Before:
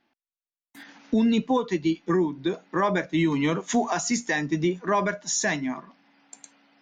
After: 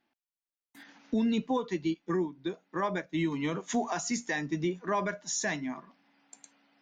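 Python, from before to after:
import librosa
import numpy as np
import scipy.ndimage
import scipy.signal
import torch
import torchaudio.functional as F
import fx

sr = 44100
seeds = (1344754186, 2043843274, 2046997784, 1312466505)

y = fx.upward_expand(x, sr, threshold_db=-36.0, expansion=1.5, at=(1.94, 3.54))
y = y * 10.0 ** (-6.5 / 20.0)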